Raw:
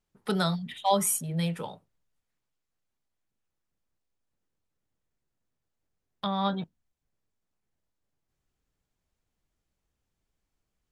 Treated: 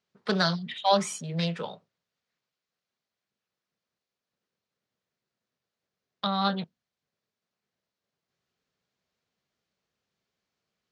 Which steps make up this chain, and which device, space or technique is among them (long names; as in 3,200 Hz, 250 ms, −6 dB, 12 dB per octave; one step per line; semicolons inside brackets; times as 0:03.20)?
full-range speaker at full volume (highs frequency-modulated by the lows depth 0.21 ms; loudspeaker in its box 190–6,100 Hz, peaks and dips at 300 Hz −9 dB, 860 Hz −5 dB, 4,200 Hz +3 dB)
level +4 dB